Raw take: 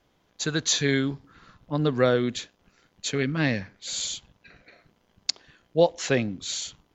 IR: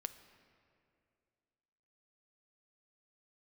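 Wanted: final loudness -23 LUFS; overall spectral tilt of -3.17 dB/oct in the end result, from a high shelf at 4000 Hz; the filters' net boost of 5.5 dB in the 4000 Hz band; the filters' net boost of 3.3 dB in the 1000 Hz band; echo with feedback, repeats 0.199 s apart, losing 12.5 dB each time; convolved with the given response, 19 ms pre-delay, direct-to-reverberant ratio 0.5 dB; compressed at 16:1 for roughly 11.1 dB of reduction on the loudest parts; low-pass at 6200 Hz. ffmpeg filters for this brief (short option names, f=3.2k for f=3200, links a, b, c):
-filter_complex "[0:a]lowpass=6.2k,equalizer=f=1k:t=o:g=4,highshelf=f=4k:g=6,equalizer=f=4k:t=o:g=3.5,acompressor=threshold=-23dB:ratio=16,aecho=1:1:199|398|597:0.237|0.0569|0.0137,asplit=2[a][b];[1:a]atrim=start_sample=2205,adelay=19[c];[b][c]afir=irnorm=-1:irlink=0,volume=2.5dB[d];[a][d]amix=inputs=2:normalize=0,volume=3.5dB"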